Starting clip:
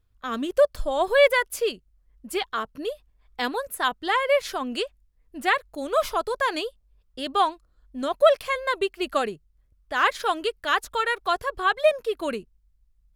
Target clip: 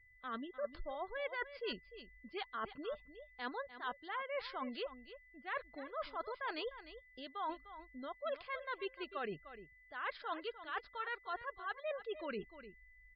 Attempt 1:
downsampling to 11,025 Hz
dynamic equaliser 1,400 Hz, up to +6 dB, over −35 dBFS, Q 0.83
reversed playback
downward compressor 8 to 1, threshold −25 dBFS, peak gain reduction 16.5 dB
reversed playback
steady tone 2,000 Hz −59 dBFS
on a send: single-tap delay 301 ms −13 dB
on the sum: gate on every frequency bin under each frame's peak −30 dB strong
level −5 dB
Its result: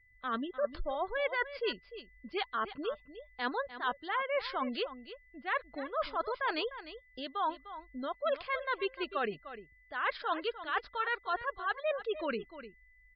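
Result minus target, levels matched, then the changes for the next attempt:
downward compressor: peak gain reduction −8.5 dB
change: downward compressor 8 to 1, threshold −34.5 dBFS, peak gain reduction 25 dB

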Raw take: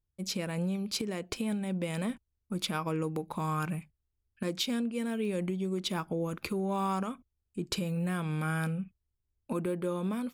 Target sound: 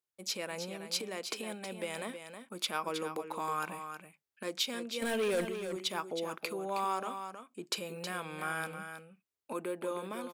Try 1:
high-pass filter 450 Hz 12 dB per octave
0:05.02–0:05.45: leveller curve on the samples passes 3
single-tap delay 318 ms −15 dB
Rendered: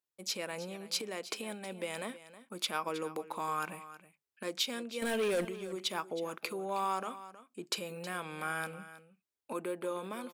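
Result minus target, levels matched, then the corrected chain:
echo-to-direct −6.5 dB
high-pass filter 450 Hz 12 dB per octave
0:05.02–0:05.45: leveller curve on the samples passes 3
single-tap delay 318 ms −8.5 dB

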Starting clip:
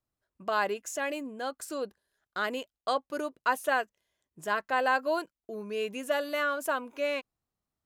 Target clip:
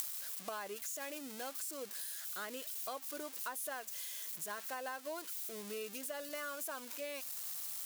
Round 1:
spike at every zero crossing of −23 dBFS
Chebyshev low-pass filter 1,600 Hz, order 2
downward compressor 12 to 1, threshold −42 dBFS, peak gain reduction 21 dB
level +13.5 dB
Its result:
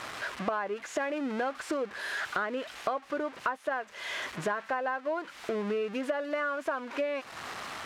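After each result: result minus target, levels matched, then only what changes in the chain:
downward compressor: peak gain reduction −11.5 dB; 2,000 Hz band +5.0 dB
change: downward compressor 12 to 1, threshold −54 dBFS, peak gain reduction 32 dB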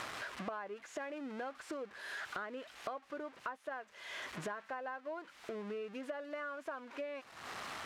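2,000 Hz band +5.5 dB
remove: Chebyshev low-pass filter 1,600 Hz, order 2

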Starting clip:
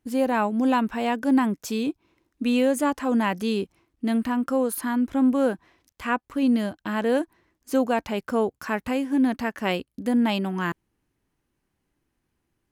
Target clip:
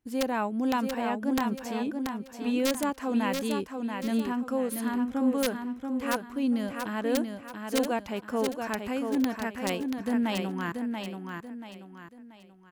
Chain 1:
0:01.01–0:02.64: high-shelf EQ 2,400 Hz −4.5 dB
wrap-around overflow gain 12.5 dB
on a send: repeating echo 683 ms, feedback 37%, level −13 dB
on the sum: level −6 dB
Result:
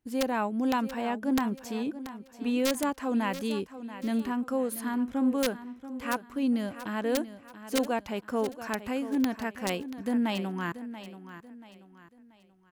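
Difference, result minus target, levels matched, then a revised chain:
echo-to-direct −7.5 dB
0:01.01–0:02.64: high-shelf EQ 2,400 Hz −4.5 dB
wrap-around overflow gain 12.5 dB
on a send: repeating echo 683 ms, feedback 37%, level −5.5 dB
on the sum: level −6 dB

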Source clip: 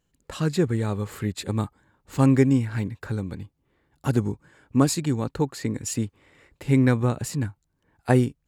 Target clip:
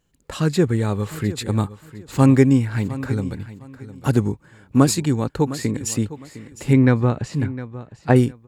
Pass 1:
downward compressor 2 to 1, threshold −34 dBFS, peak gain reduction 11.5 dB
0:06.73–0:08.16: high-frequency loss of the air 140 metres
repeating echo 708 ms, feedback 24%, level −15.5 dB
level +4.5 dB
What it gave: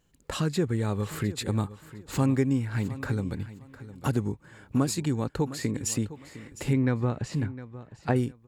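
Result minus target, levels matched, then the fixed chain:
downward compressor: peak gain reduction +11.5 dB
0:06.73–0:08.16: high-frequency loss of the air 140 metres
repeating echo 708 ms, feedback 24%, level −15.5 dB
level +4.5 dB

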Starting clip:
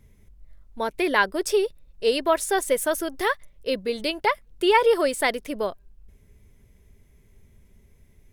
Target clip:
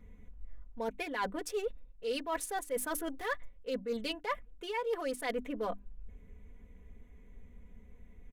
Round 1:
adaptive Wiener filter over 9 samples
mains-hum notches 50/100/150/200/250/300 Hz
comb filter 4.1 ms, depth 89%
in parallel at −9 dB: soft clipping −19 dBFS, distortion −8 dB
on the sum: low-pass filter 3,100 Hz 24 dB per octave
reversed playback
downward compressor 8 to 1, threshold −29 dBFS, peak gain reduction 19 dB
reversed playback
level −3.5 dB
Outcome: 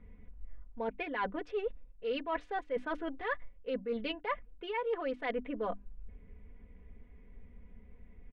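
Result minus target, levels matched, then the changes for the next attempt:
soft clipping: distortion −6 dB; 4,000 Hz band −3.0 dB
change: soft clipping −29.5 dBFS, distortion −2 dB
remove: low-pass filter 3,100 Hz 24 dB per octave

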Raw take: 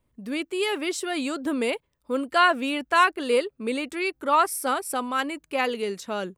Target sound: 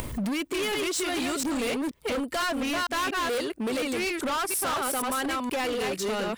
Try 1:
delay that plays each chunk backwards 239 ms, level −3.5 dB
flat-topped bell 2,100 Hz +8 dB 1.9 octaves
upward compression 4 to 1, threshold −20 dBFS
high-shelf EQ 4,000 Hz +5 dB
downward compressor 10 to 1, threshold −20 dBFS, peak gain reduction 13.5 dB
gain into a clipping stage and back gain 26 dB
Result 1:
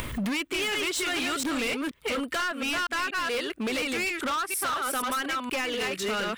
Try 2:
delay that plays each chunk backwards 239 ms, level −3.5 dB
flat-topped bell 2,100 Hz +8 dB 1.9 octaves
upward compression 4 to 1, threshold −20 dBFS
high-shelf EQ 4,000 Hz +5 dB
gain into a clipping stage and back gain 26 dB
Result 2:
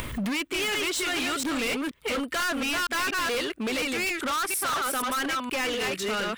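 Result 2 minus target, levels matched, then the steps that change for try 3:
2,000 Hz band +3.0 dB
remove: flat-topped bell 2,100 Hz +8 dB 1.9 octaves

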